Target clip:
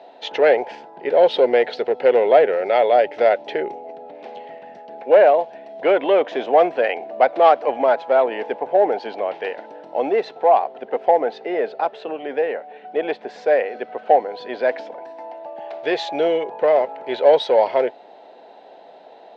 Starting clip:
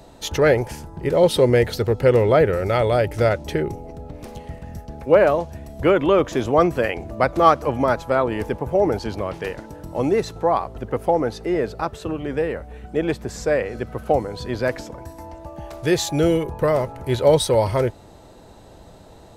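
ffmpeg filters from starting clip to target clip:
-filter_complex "[0:a]asplit=2[s0][s1];[s1]asoftclip=type=hard:threshold=0.188,volume=0.631[s2];[s0][s2]amix=inputs=2:normalize=0,highpass=f=320:w=0.5412,highpass=f=320:w=1.3066,equalizer=f=330:t=q:w=4:g=-8,equalizer=f=730:t=q:w=4:g=8,equalizer=f=1200:t=q:w=4:g=-10,lowpass=f=3600:w=0.5412,lowpass=f=3600:w=1.3066,volume=0.841"

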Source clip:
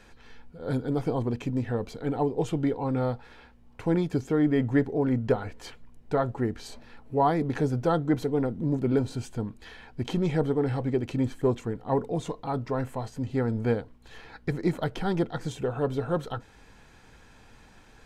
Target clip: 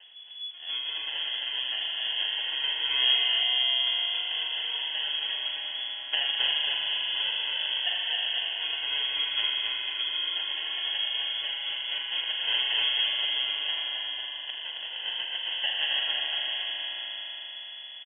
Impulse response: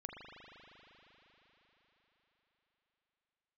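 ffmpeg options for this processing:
-filter_complex "[0:a]asettb=1/sr,asplit=3[s0][s1][s2];[s0]atrim=end=13.554[s3];[s1]atrim=start=13.55:end=15.81,asetpts=PTS-STARTPTS,afade=t=in:d=0.004:c=qsin,afade=t=out:st=2.256:d=0.004:c=qsin,aemphasis=mode=production:type=riaa[s4];[s2]atrim=start=15.806[s5];[s3][s4]acrossfade=d=0.004:c1=hsin:c2=qsin[s6];[s6][s5]acrossfade=d=0.004:c1=qsin:c2=hsin,acompressor=threshold=0.0501:ratio=6,aphaser=in_gain=1:out_gain=1:delay=1.9:decay=0.62:speed=0.32:type=triangular,acrusher=samples=41:mix=1:aa=0.000001,aecho=1:1:270|499.5|694.6|860.4|1001:0.631|0.398|0.251|0.158|0.1[s7];[1:a]atrim=start_sample=2205[s8];[s7][s8]afir=irnorm=-1:irlink=0,lowpass=f=2900:t=q:w=0.5098,lowpass=f=2900:t=q:w=0.6013,lowpass=f=2900:t=q:w=0.9,lowpass=f=2900:t=q:w=2.563,afreqshift=-3400"

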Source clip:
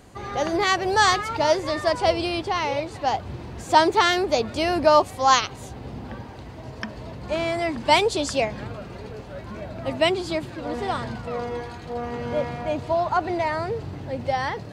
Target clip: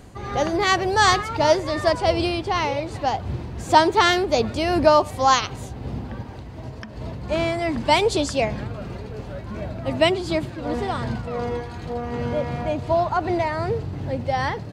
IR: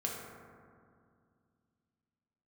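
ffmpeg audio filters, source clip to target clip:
-filter_complex "[0:a]lowshelf=f=230:g=6.5,asplit=3[s0][s1][s2];[s0]afade=t=out:st=6.22:d=0.02[s3];[s1]acompressor=threshold=0.0251:ratio=6,afade=t=in:st=6.22:d=0.02,afade=t=out:st=7:d=0.02[s4];[s2]afade=t=in:st=7:d=0.02[s5];[s3][s4][s5]amix=inputs=3:normalize=0,tremolo=f=2.7:d=0.31,asplit=2[s6][s7];[s7]adelay=100,highpass=300,lowpass=3400,asoftclip=type=hard:threshold=0.299,volume=0.0631[s8];[s6][s8]amix=inputs=2:normalize=0,volume=1.26"

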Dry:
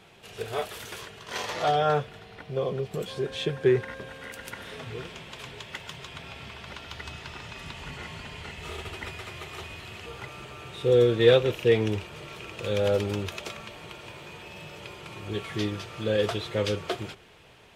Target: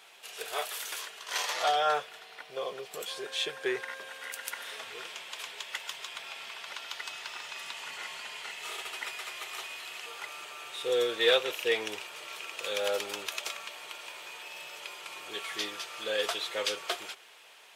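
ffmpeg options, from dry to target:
-af "highpass=730,highshelf=f=5200:g=8.5"

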